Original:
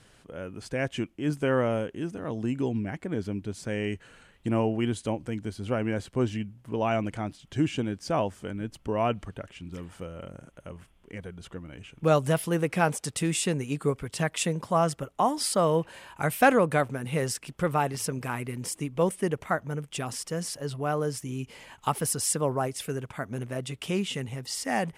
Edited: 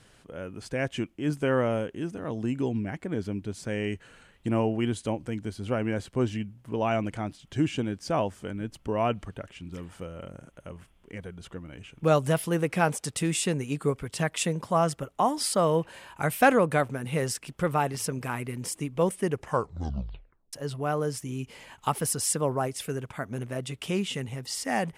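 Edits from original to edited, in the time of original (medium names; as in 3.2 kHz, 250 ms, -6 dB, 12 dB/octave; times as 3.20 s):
19.27 s: tape stop 1.26 s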